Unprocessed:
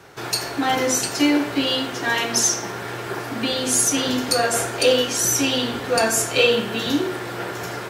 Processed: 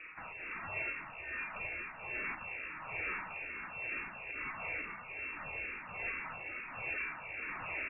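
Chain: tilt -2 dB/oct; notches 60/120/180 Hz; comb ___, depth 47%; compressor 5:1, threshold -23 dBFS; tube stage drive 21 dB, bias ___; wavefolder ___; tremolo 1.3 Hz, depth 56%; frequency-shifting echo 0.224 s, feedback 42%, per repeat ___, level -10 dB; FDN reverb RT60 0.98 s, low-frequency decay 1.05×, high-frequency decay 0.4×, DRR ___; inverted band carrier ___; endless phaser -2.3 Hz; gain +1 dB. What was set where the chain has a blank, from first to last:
6.3 ms, 0.8, -33 dBFS, +58 Hz, 16 dB, 2700 Hz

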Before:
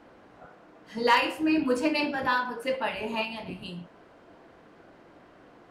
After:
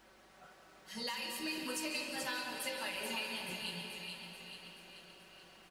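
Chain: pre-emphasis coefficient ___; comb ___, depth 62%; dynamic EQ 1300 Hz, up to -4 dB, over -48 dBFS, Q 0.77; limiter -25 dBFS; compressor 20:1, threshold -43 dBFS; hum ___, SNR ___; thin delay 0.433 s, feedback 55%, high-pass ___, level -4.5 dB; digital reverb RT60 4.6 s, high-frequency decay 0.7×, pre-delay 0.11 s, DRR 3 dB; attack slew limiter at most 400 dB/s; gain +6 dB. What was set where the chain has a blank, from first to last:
0.9, 5.3 ms, 50 Hz, 32 dB, 2500 Hz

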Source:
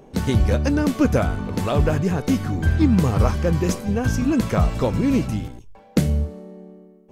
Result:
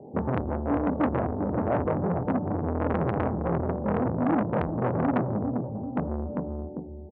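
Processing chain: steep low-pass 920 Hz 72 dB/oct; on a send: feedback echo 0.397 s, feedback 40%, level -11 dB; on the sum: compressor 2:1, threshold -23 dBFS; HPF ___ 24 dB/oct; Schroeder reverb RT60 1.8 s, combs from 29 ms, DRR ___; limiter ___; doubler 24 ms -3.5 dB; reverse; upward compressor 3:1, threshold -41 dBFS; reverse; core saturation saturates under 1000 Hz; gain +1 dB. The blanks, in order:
85 Hz, 14.5 dB, -13 dBFS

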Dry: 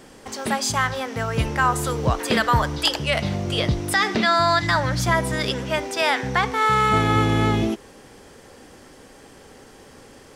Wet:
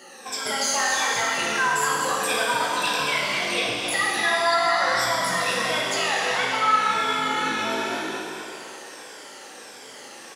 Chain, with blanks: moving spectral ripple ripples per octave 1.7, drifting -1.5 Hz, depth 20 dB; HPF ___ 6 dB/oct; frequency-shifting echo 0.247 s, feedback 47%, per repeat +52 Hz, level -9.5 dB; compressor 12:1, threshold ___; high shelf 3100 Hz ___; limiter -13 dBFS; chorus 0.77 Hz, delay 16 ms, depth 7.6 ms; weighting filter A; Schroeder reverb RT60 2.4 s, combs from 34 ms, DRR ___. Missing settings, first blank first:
54 Hz, -18 dBFS, +5.5 dB, -1.5 dB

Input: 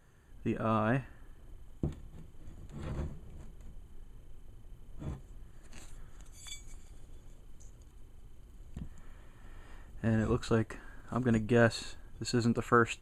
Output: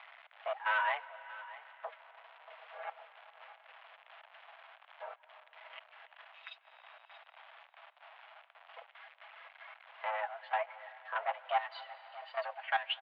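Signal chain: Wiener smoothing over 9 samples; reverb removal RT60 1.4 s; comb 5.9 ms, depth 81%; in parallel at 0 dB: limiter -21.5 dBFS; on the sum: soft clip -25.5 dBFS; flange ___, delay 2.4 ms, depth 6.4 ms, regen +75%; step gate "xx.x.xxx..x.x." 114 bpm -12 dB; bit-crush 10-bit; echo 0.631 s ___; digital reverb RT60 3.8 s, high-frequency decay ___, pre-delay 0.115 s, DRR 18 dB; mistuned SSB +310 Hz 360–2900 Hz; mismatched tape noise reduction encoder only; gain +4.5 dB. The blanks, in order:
1.2 Hz, -18 dB, 0.9×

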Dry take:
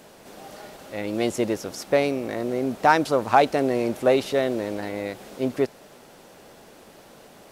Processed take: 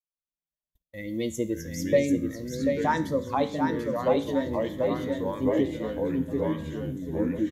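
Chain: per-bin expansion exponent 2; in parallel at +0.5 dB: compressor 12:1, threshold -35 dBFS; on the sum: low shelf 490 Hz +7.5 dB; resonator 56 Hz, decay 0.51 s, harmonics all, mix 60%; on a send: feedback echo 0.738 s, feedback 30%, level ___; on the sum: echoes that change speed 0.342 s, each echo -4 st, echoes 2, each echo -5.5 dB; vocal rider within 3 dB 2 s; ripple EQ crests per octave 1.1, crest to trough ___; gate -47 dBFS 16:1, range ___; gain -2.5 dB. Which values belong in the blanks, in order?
-4 dB, 9 dB, -41 dB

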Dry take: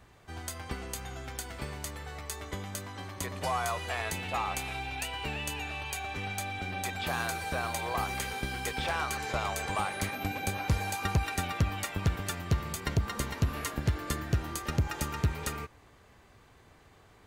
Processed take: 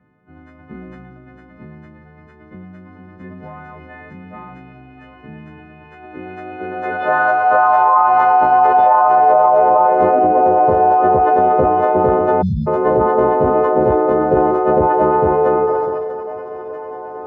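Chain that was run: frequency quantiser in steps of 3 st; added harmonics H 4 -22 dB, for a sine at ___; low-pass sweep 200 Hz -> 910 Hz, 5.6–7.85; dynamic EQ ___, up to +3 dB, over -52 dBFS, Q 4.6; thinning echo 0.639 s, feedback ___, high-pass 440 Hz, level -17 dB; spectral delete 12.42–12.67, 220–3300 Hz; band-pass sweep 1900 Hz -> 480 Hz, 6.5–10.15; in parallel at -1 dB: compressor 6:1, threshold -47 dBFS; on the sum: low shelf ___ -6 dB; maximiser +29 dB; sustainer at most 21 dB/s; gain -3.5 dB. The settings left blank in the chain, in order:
-12 dBFS, 380 Hz, 85%, 68 Hz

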